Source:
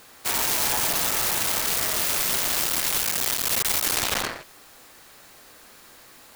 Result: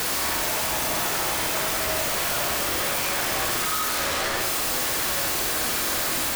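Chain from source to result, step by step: one-bit comparator; reverse echo 65 ms -4.5 dB; on a send at -4.5 dB: reverberation, pre-delay 3 ms; on the sum: trim -1.5 dB

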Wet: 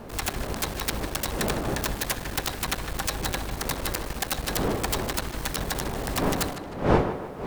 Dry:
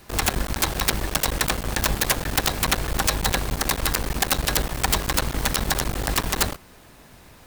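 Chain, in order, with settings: wind noise 570 Hz -25 dBFS; tape echo 152 ms, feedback 51%, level -9 dB, low-pass 3.6 kHz; trim -7 dB

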